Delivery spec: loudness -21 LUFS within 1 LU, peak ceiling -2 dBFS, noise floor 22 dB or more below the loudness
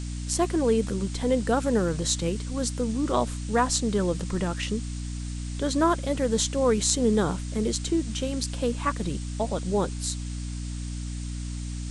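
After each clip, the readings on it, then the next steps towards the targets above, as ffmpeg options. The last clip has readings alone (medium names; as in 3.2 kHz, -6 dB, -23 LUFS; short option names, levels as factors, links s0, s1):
hum 60 Hz; highest harmonic 300 Hz; hum level -30 dBFS; noise floor -33 dBFS; noise floor target -49 dBFS; loudness -27.0 LUFS; peak level -4.0 dBFS; loudness target -21.0 LUFS
-> -af "bandreject=f=60:t=h:w=4,bandreject=f=120:t=h:w=4,bandreject=f=180:t=h:w=4,bandreject=f=240:t=h:w=4,bandreject=f=300:t=h:w=4"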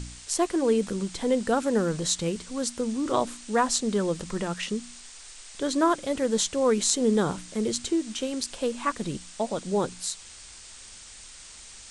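hum not found; noise floor -46 dBFS; noise floor target -49 dBFS
-> -af "afftdn=nr=6:nf=-46"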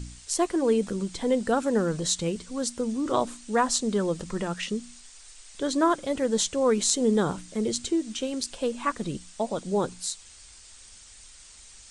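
noise floor -50 dBFS; loudness -27.0 LUFS; peak level -4.0 dBFS; loudness target -21.0 LUFS
-> -af "volume=2,alimiter=limit=0.794:level=0:latency=1"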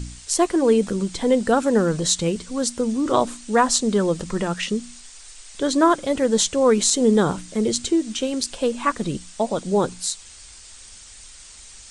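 loudness -21.0 LUFS; peak level -2.0 dBFS; noise floor -44 dBFS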